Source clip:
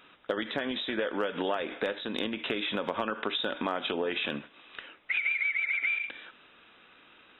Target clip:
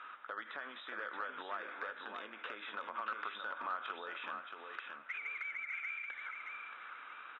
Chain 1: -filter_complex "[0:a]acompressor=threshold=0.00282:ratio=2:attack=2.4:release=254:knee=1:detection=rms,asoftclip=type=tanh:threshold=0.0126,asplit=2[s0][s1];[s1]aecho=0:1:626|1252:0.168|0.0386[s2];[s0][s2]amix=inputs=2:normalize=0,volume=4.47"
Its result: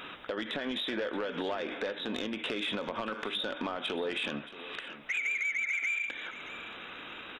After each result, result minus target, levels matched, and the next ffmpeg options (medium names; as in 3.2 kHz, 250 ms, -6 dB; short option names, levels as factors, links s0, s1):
1 kHz band -7.5 dB; echo-to-direct -10 dB
-filter_complex "[0:a]acompressor=threshold=0.00282:ratio=2:attack=2.4:release=254:knee=1:detection=rms,bandpass=f=1300:t=q:w=3.4:csg=0,asoftclip=type=tanh:threshold=0.0126,asplit=2[s0][s1];[s1]aecho=0:1:626|1252:0.168|0.0386[s2];[s0][s2]amix=inputs=2:normalize=0,volume=4.47"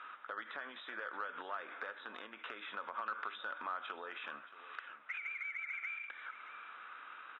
echo-to-direct -10 dB
-filter_complex "[0:a]acompressor=threshold=0.00282:ratio=2:attack=2.4:release=254:knee=1:detection=rms,bandpass=f=1300:t=q:w=3.4:csg=0,asoftclip=type=tanh:threshold=0.0126,asplit=2[s0][s1];[s1]aecho=0:1:626|1252|1878:0.531|0.122|0.0281[s2];[s0][s2]amix=inputs=2:normalize=0,volume=4.47"